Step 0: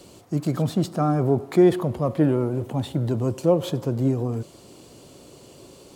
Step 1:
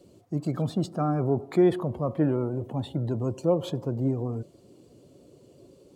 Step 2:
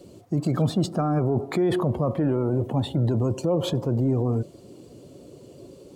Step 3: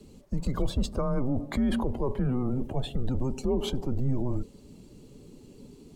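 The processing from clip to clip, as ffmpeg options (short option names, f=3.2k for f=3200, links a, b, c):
-af "afftdn=nr=12:nf=-44,volume=-4.5dB"
-af "alimiter=limit=-23dB:level=0:latency=1:release=18,volume=8dB"
-af "afreqshift=-130,volume=-3.5dB"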